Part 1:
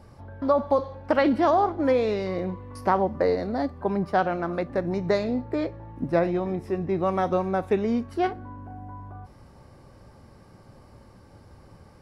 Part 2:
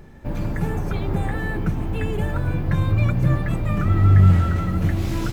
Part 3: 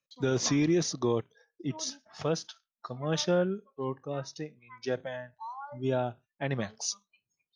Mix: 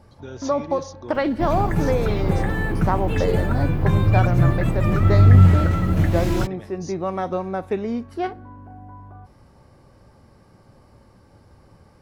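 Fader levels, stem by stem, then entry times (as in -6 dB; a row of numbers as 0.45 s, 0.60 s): -1.0 dB, +2.0 dB, -9.5 dB; 0.00 s, 1.15 s, 0.00 s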